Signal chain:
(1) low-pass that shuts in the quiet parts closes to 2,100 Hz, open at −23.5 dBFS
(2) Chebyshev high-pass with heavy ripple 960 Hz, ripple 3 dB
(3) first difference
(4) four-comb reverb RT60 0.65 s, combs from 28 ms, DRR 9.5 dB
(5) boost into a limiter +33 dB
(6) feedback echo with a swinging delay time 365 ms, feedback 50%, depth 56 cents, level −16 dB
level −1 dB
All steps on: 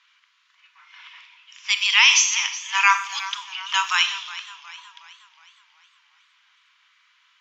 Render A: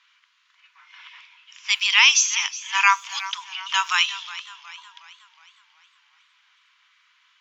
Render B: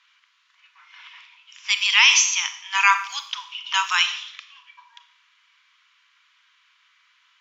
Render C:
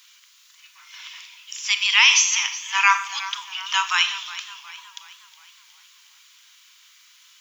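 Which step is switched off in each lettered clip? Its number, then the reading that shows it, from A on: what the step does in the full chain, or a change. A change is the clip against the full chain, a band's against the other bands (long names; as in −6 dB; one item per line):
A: 4, change in momentary loudness spread −2 LU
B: 6, change in momentary loudness spread −2 LU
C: 1, change in momentary loudness spread +3 LU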